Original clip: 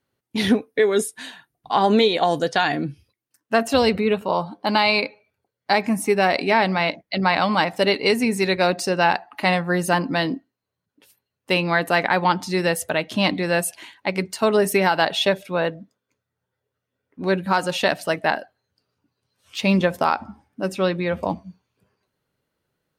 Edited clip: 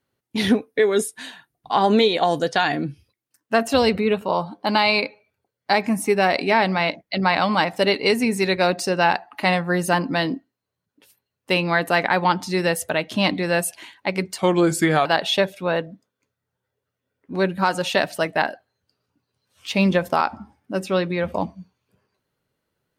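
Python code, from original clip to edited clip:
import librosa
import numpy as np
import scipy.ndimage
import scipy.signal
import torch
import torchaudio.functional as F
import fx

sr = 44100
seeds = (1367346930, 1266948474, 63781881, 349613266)

y = fx.edit(x, sr, fx.speed_span(start_s=14.38, length_s=0.56, speed=0.83), tone=tone)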